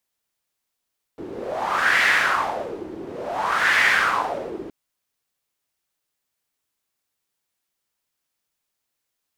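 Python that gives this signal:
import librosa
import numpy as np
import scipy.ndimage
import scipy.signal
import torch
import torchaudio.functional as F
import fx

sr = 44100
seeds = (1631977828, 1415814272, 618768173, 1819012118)

y = fx.wind(sr, seeds[0], length_s=3.52, low_hz=340.0, high_hz=1900.0, q=4.3, gusts=2, swing_db=16.5)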